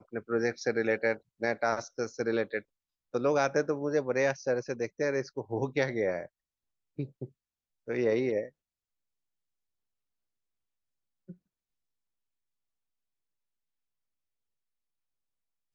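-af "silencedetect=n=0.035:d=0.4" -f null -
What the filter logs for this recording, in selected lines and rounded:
silence_start: 2.59
silence_end: 3.15 | silence_duration: 0.56
silence_start: 6.21
silence_end: 6.99 | silence_duration: 0.78
silence_start: 7.24
silence_end: 7.90 | silence_duration: 0.66
silence_start: 8.42
silence_end: 15.74 | silence_duration: 7.33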